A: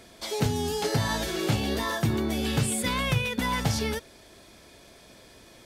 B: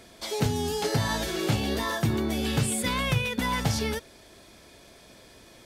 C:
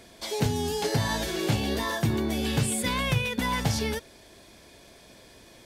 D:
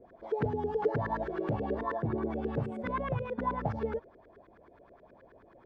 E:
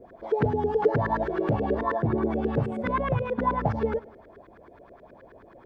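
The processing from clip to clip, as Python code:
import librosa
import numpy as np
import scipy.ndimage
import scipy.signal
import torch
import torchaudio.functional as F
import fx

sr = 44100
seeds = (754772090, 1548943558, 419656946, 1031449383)

y1 = x
y2 = fx.notch(y1, sr, hz=1300.0, q=15.0)
y3 = fx.filter_lfo_lowpass(y2, sr, shape='saw_up', hz=9.4, low_hz=380.0, high_hz=1600.0, q=4.5)
y3 = F.gain(torch.from_numpy(y3), -8.5).numpy()
y4 = fx.echo_feedback(y3, sr, ms=99, feedback_pct=52, wet_db=-21.5)
y4 = F.gain(torch.from_numpy(y4), 7.0).numpy()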